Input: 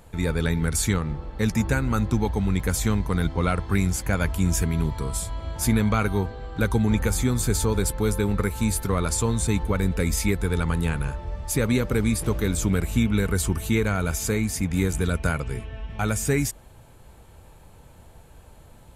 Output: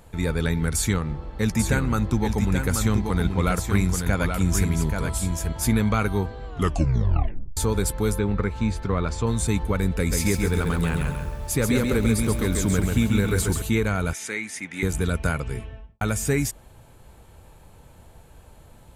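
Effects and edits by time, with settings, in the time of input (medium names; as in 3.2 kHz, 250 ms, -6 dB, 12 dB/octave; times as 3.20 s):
0.76–5.53 s: delay 831 ms -5.5 dB
6.46 s: tape stop 1.11 s
8.19–9.27 s: distance through air 150 m
9.98–13.62 s: bit-crushed delay 136 ms, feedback 35%, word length 8-bit, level -4 dB
14.13–14.83 s: cabinet simulation 420–9300 Hz, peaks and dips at 470 Hz -9 dB, 700 Hz -9 dB, 1.1 kHz -7 dB, 2 kHz +8 dB, 4.7 kHz -7 dB, 7.4 kHz -7 dB
15.58–16.01 s: studio fade out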